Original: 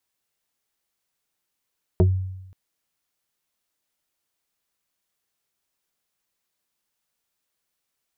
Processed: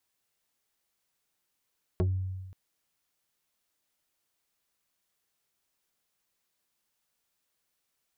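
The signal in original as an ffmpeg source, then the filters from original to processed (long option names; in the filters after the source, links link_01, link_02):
-f lavfi -i "aevalsrc='0.282*pow(10,-3*t/0.92)*sin(2*PI*93.7*t+1.7*pow(10,-3*t/0.17)*sin(2*PI*2.9*93.7*t))':duration=0.53:sample_rate=44100"
-af "acompressor=threshold=-30dB:ratio=2,asoftclip=type=tanh:threshold=-21.5dB"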